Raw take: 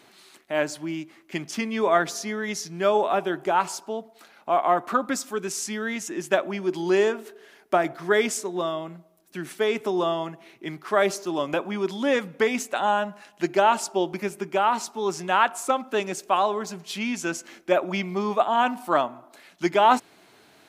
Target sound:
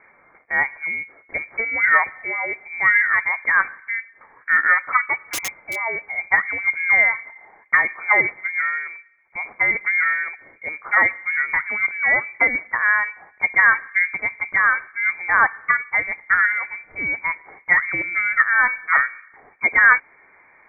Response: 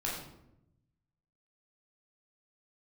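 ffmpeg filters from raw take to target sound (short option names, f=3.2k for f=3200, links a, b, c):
-filter_complex "[0:a]lowpass=f=2.1k:t=q:w=0.5098,lowpass=f=2.1k:t=q:w=0.6013,lowpass=f=2.1k:t=q:w=0.9,lowpass=f=2.1k:t=q:w=2.563,afreqshift=-2500,asplit=3[a][b][c];[a]afade=t=out:st=5.27:d=0.02[d];[b]aeval=exprs='(mod(16.8*val(0)+1,2)-1)/16.8':c=same,afade=t=in:st=5.27:d=0.02,afade=t=out:st=5.74:d=0.02[e];[c]afade=t=in:st=5.74:d=0.02[f];[d][e][f]amix=inputs=3:normalize=0,volume=4.5dB"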